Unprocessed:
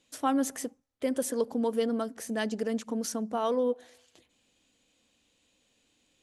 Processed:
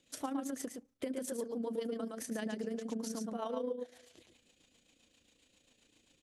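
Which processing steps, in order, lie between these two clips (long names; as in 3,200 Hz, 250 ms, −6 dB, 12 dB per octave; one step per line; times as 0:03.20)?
on a send: single-tap delay 115 ms −4.5 dB
on the sum: rotating-speaker cabinet horn 7.5 Hz
downward compressor 3 to 1, threshold −41 dBFS, peak gain reduction 14.5 dB
amplitude modulation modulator 28 Hz, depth 35%
level +4.5 dB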